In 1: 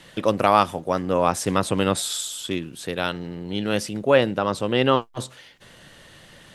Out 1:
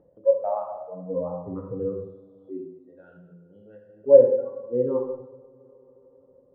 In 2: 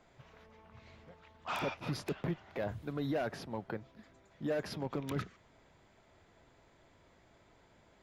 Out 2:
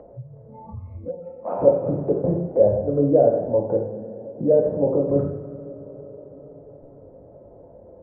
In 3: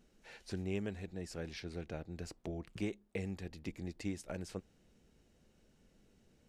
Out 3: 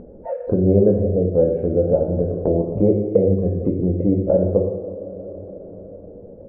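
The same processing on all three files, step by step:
spectral noise reduction 28 dB; ladder low-pass 590 Hz, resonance 70%; bell 91 Hz +2.5 dB 0.27 oct; two-slope reverb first 0.89 s, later 3.1 s, from -25 dB, DRR -1.5 dB; upward compressor, threshold -43 dBFS; normalise peaks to -2 dBFS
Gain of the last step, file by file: +0.5, +20.5, +28.0 dB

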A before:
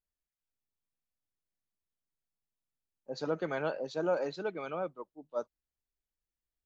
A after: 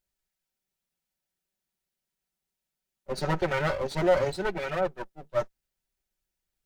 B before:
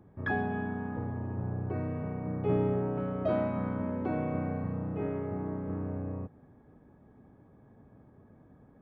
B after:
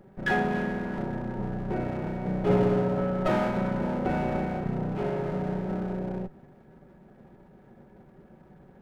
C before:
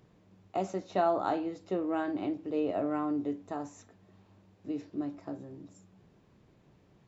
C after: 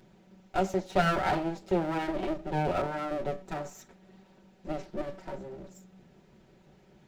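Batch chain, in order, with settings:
minimum comb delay 5.3 ms; notch 1100 Hz, Q 7.9; normalise peaks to -12 dBFS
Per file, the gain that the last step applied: +9.0, +6.5, +6.0 dB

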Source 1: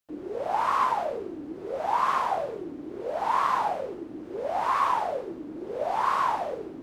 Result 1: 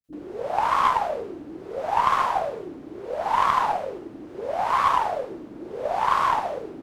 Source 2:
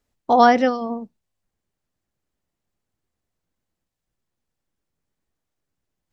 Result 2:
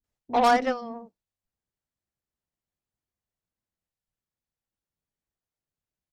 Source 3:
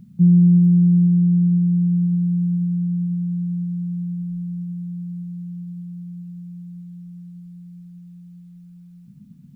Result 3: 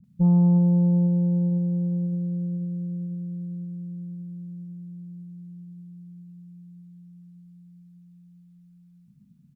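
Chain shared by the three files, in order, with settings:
bands offset in time lows, highs 40 ms, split 310 Hz; added harmonics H 5 -17 dB, 6 -27 dB, 7 -17 dB, 8 -44 dB, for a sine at -3.5 dBFS; match loudness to -24 LUFS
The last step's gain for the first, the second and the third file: +5.5, -7.0, -7.0 dB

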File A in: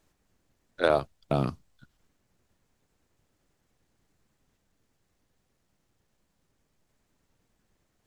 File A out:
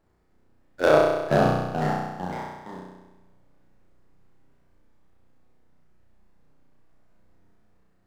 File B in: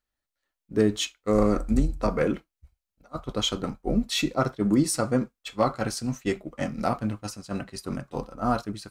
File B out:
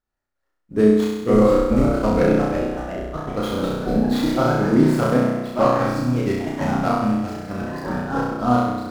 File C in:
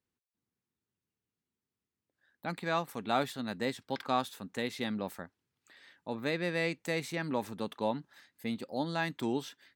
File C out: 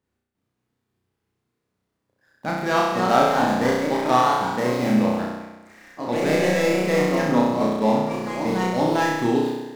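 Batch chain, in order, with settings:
median filter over 15 samples; echoes that change speed 0.578 s, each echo +2 st, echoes 3, each echo -6 dB; flutter echo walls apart 5.6 m, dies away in 1.1 s; normalise peaks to -3 dBFS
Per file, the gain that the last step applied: +2.5, +2.0, +9.5 dB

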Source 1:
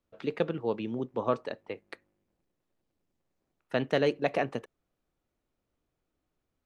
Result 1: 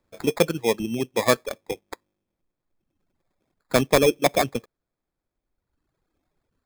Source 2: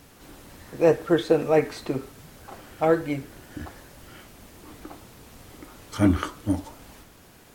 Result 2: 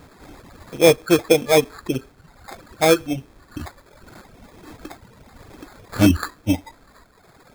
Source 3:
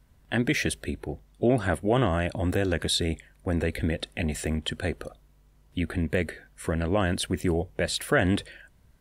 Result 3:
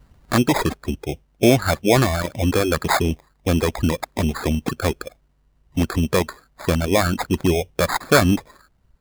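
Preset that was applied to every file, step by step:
sample-rate reducer 2900 Hz, jitter 0%; reverb removal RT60 1.4 s; normalise peaks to -3 dBFS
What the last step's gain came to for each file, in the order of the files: +9.0, +5.5, +8.5 dB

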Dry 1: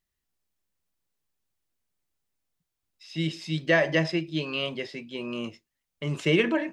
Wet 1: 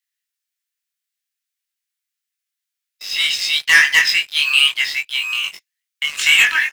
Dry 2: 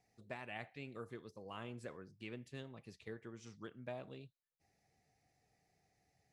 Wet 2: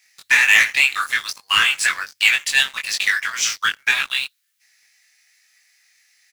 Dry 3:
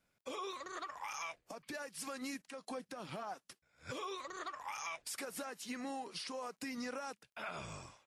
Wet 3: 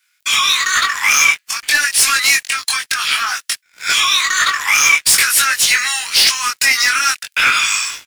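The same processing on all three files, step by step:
inverse Chebyshev high-pass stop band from 600 Hz, stop band 50 dB; sample leveller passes 3; doubler 21 ms -2.5 dB; normalise peaks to -3 dBFS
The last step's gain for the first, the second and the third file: +8.0, +29.0, +25.5 dB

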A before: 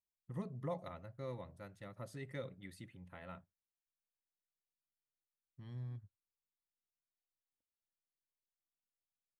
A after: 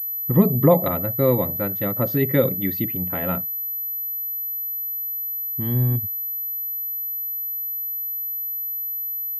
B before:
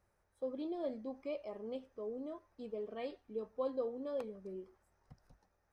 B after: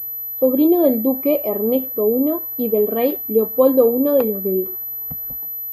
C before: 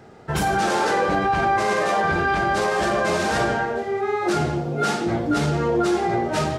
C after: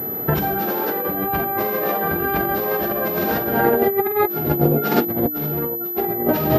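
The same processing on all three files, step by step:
bell 290 Hz +9.5 dB 2.1 oct; negative-ratio compressor -21 dBFS, ratio -0.5; pulse-width modulation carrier 12000 Hz; normalise peaks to -3 dBFS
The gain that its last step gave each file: +20.0, +17.5, +1.5 dB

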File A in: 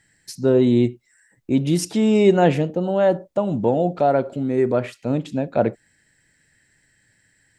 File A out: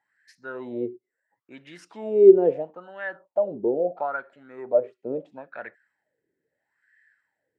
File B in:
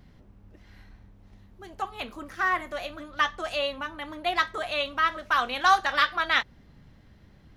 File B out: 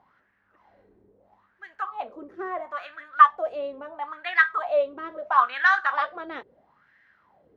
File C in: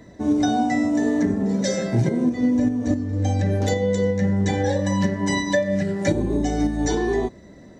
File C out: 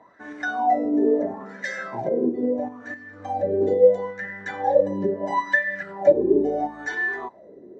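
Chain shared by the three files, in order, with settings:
wah 0.75 Hz 380–1800 Hz, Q 7.2; match loudness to -23 LUFS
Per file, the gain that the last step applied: +4.5, +14.0, +12.5 dB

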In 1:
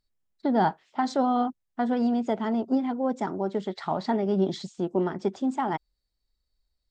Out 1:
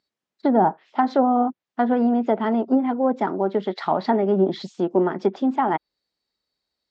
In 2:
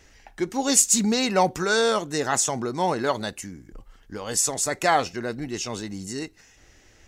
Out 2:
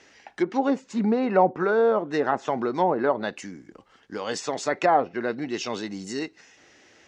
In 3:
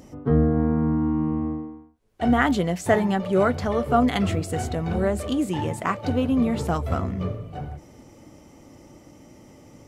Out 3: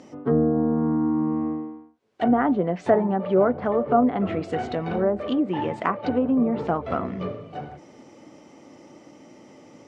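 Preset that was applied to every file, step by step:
BPF 220–5400 Hz; treble ducked by the level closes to 910 Hz, closed at -20 dBFS; normalise peaks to -6 dBFS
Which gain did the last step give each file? +7.0, +3.0, +2.5 dB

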